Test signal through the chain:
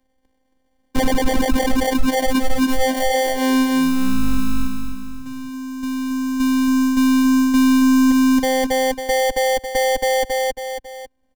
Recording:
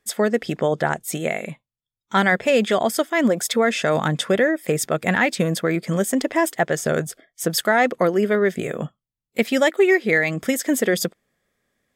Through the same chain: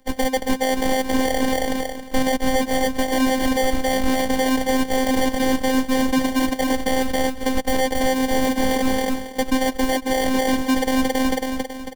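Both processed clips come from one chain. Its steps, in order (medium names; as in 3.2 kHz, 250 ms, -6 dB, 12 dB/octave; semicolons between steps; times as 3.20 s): treble shelf 6.2 kHz -9.5 dB; comb 6.4 ms, depth 68%; sample-rate reducer 1.3 kHz, jitter 0%; feedback delay 274 ms, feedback 33%, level -6 dB; reverse; compression 6:1, threshold -25 dBFS; reverse; robot voice 261 Hz; bass shelf 95 Hz +11.5 dB; loudness maximiser +13.5 dB; three bands compressed up and down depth 40%; trim -2.5 dB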